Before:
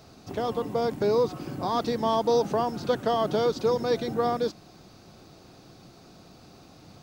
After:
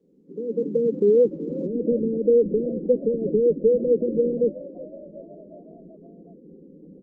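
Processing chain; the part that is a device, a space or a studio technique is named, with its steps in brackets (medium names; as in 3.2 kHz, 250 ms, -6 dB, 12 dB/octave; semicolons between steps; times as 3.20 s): Chebyshev band-pass 160–530 Hz, order 5; frequency-shifting echo 371 ms, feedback 59%, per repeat +41 Hz, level -18.5 dB; noise-suppressed video call (high-pass 120 Hz 12 dB/octave; spectral gate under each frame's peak -20 dB strong; level rider gain up to 13.5 dB; trim -5.5 dB; Opus 20 kbps 48 kHz)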